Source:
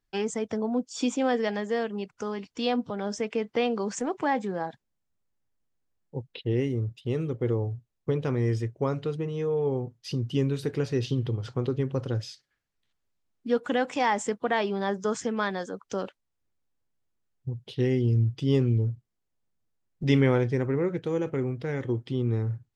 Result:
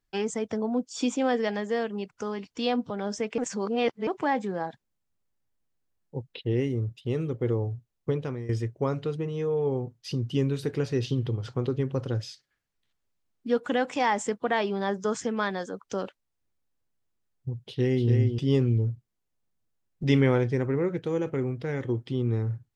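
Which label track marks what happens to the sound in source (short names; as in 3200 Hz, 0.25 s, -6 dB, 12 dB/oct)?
3.380000	4.070000	reverse
8.090000	8.490000	fade out, to -15.5 dB
17.600000	18.090000	echo throw 0.29 s, feedback 10%, level -5 dB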